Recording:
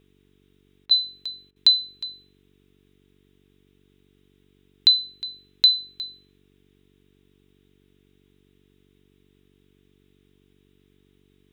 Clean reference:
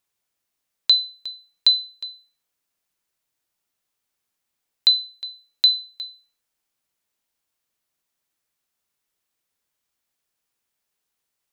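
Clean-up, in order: de-hum 47.7 Hz, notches 9; interpolate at 0.86/1.51, 48 ms; noise print and reduce 18 dB

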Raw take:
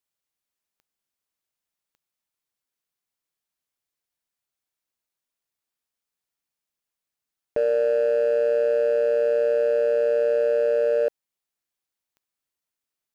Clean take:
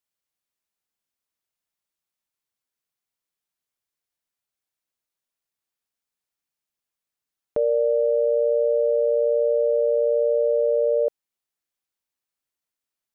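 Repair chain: clip repair -16.5 dBFS; de-click

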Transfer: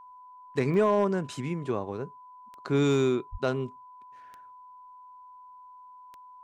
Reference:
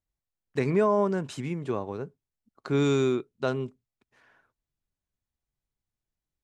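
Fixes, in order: clip repair -15.5 dBFS; de-click; notch 1000 Hz, Q 30; de-plosive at 3.31

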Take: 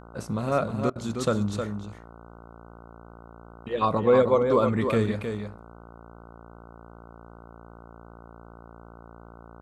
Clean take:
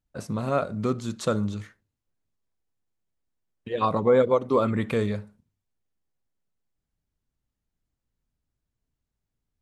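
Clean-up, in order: de-hum 57.4 Hz, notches 26; interpolate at 0.9, 55 ms; inverse comb 0.312 s -6.5 dB

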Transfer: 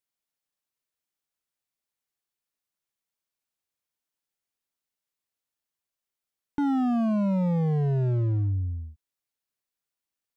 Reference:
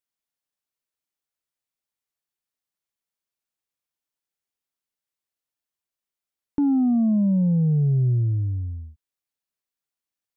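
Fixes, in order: clip repair -23 dBFS

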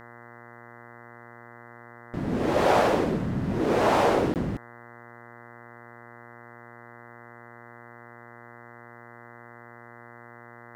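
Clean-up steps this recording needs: de-hum 118.7 Hz, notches 17; interpolate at 4.34, 18 ms

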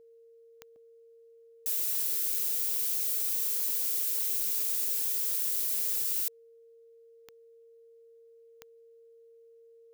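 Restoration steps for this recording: de-click; notch 460 Hz, Q 30; interpolate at 0.76/2.32/5.56/6.04, 2 ms

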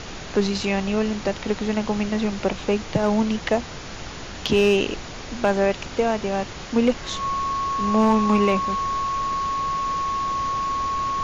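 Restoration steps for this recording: clip repair -10 dBFS; notch 1100 Hz, Q 30; noise print and reduce 30 dB

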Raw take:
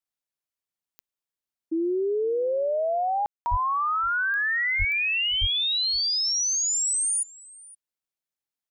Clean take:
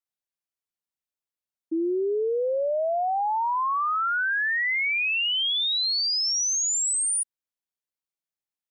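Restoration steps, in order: de-click; 3.5–3.62 HPF 140 Hz 24 dB/oct; 4.78–4.9 HPF 140 Hz 24 dB/oct; 5.4–5.52 HPF 140 Hz 24 dB/oct; room tone fill 3.26–3.46; inverse comb 0.517 s -22 dB

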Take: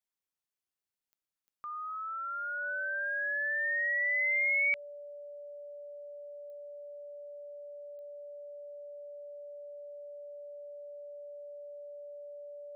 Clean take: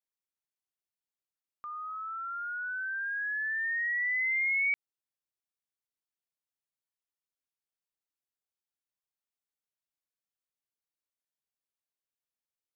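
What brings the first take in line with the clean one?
de-click; notch 580 Hz, Q 30

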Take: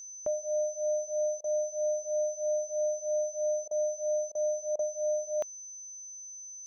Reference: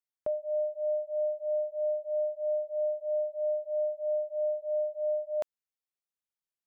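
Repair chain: notch 6100 Hz, Q 30; interpolate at 1.41/3.68/4.32/4.76, 29 ms

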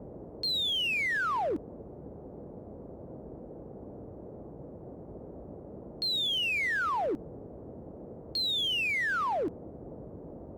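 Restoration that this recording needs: clip repair -27 dBFS; noise print and reduce 30 dB

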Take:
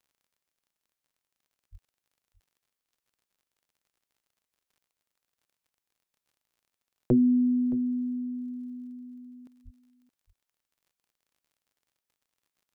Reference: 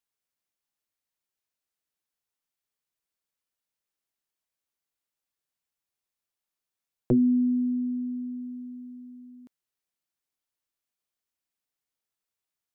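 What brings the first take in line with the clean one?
de-click; 1.71–1.83 HPF 140 Hz 24 dB/oct; 9.64–9.76 HPF 140 Hz 24 dB/oct; inverse comb 0.62 s -17 dB

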